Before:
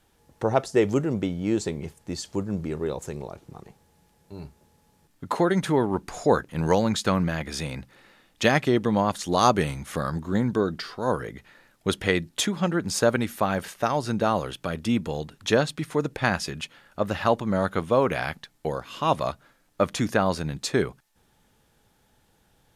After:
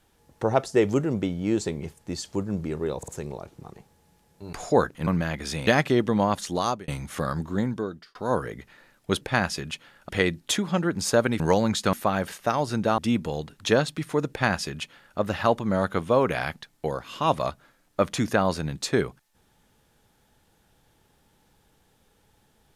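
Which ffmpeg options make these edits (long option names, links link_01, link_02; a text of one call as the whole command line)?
ffmpeg -i in.wav -filter_complex "[0:a]asplit=13[link_01][link_02][link_03][link_04][link_05][link_06][link_07][link_08][link_09][link_10][link_11][link_12][link_13];[link_01]atrim=end=3.032[link_14];[link_02]atrim=start=2.978:end=3.032[link_15];[link_03]atrim=start=2.978:end=4.432[link_16];[link_04]atrim=start=6.068:end=6.612[link_17];[link_05]atrim=start=7.138:end=7.742[link_18];[link_06]atrim=start=8.438:end=9.65,asetpts=PTS-STARTPTS,afade=type=out:start_time=0.762:duration=0.45[link_19];[link_07]atrim=start=9.65:end=10.92,asetpts=PTS-STARTPTS,afade=type=in:duration=0.004:curve=hsin,afade=type=out:start_time=0.59:duration=0.68[link_20];[link_08]atrim=start=10.92:end=11.982,asetpts=PTS-STARTPTS,afade=type=in:duration=0.004:curve=hsin[link_21];[link_09]atrim=start=16.108:end=16.992[link_22];[link_10]atrim=start=11.978:end=13.292[link_23];[link_11]atrim=start=6.608:end=7.142[link_24];[link_12]atrim=start=13.288:end=14.342[link_25];[link_13]atrim=start=14.788[link_26];[link_14][link_15]acrossfade=duration=0.004:curve1=hsin:curve2=hsin[link_27];[link_27][link_16]acrossfade=duration=0.004:curve1=hsin:curve2=hsin[link_28];[link_28][link_17]acrossfade=duration=0.004:curve1=hsin:curve2=hsin[link_29];[link_29][link_18]acrossfade=duration=0.004:curve1=hsin:curve2=hsin[link_30];[link_19][link_20][link_21]concat=n=3:v=0:a=1[link_31];[link_30][link_31]acrossfade=duration=0.004:curve1=hsin:curve2=hsin[link_32];[link_32][link_22]acrossfade=duration=0.004:curve1=hsin:curve2=hsin[link_33];[link_33][link_23]acrossfade=duration=0.004:curve1=hsin:curve2=hsin[link_34];[link_34][link_24]acrossfade=duration=0.004:curve1=hsin:curve2=hsin[link_35];[link_35][link_25]acrossfade=duration=0.004:curve1=hsin:curve2=hsin[link_36];[link_36][link_26]acrossfade=duration=0.004:curve1=hsin:curve2=hsin" out.wav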